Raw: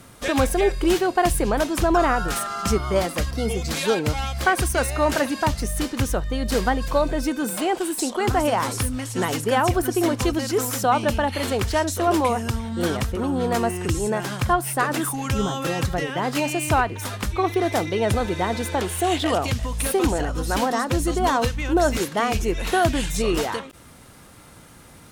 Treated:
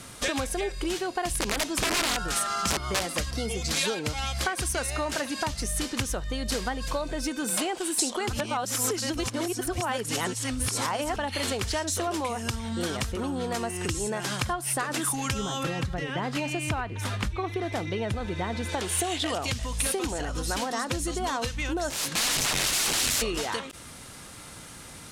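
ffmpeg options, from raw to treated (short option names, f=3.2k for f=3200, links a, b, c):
-filter_complex "[0:a]asettb=1/sr,asplit=3[a][b][c];[a]atrim=end=1.334[d];[b]atrim=start=1.33:end=3.28,asetpts=PTS-STARTPTS,afade=t=in:d=0.004:c=qsin,afade=t=out:st=1.946:d=0.004:c=qsin,aeval=exprs='(mod(4.73*val(0)+1,2)-1)/4.73':c=same[e];[c]atrim=start=3.276[f];[d][e]acrossfade=d=0.004:c1=hsin:c2=qsin[g];[g][f]acrossfade=d=0.004:c1=qsin:c2=hsin,asettb=1/sr,asplit=3[h][i][j];[h]atrim=end=15.634[k];[i]atrim=start=15.63:end=18.69,asetpts=PTS-STARTPTS,afade=t=in:d=0.004:c=qsin,afade=t=out:st=3.056:d=0.004:c=qsin,bass=f=250:g=6,treble=f=4k:g=-9[l];[j]atrim=start=18.686[m];[k][l]acrossfade=d=0.004:c1=hsin:c2=qsin[n];[n][m]acrossfade=d=0.004:c1=qsin:c2=hsin,asplit=3[o][p][q];[o]afade=t=out:st=21.89:d=0.02[r];[p]aeval=exprs='(mod(15.8*val(0)+1,2)-1)/15.8':c=same,afade=t=in:st=21.89:d=0.02,afade=t=out:st=23.21:d=0.02[s];[q]afade=t=in:st=23.21:d=0.02[t];[r][s][t]amix=inputs=3:normalize=0,asplit=3[u][v][w];[u]atrim=end=8.332[x];[v]atrim=start=8.328:end=11.162,asetpts=PTS-STARTPTS,areverse[y];[w]atrim=start=11.158[z];[x][y]acrossfade=d=0.004:c1=hsin:c2=hsin[aa];[aa][z]acrossfade=d=0.004:c1=hsin:c2=hsin,lowpass=10k,acompressor=threshold=-28dB:ratio=6,highshelf=f=2.2k:g=9"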